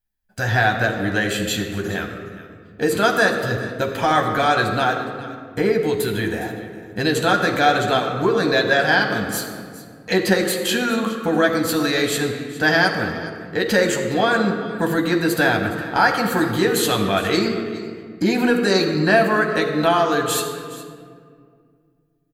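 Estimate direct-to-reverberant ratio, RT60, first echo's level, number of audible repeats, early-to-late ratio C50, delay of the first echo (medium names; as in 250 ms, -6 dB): 1.5 dB, 2.1 s, -17.5 dB, 1, 6.0 dB, 414 ms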